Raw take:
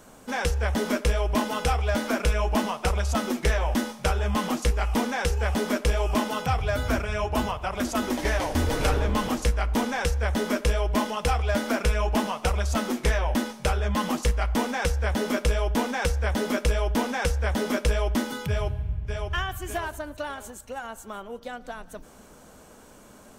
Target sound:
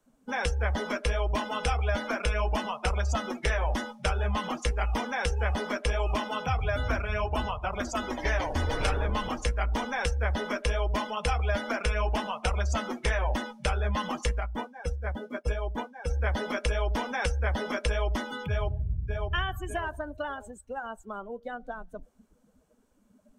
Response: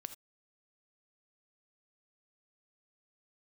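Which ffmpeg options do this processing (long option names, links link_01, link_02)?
-filter_complex "[0:a]asplit=3[link_01][link_02][link_03];[link_01]afade=type=out:start_time=14.39:duration=0.02[link_04];[link_02]agate=range=-33dB:threshold=-18dB:ratio=3:detection=peak,afade=type=in:start_time=14.39:duration=0.02,afade=type=out:start_time=16.09:duration=0.02[link_05];[link_03]afade=type=in:start_time=16.09:duration=0.02[link_06];[link_04][link_05][link_06]amix=inputs=3:normalize=0,acrossover=split=100|550|1600[link_07][link_08][link_09][link_10];[link_07]acompressor=threshold=-26dB:ratio=4[link_11];[link_08]acompressor=threshold=-37dB:ratio=4[link_12];[link_09]acompressor=threshold=-31dB:ratio=4[link_13];[link_11][link_12][link_13][link_10]amix=inputs=4:normalize=0,afftdn=noise_reduction=23:noise_floor=-37"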